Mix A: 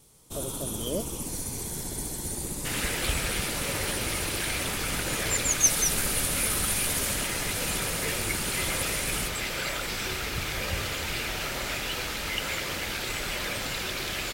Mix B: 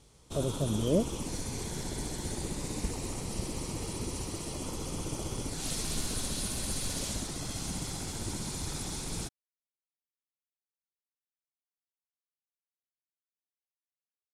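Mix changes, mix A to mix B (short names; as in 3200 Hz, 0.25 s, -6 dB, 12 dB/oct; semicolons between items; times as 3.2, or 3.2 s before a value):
speech: add tilt -3.5 dB/oct; second sound: muted; master: add LPF 6300 Hz 12 dB/oct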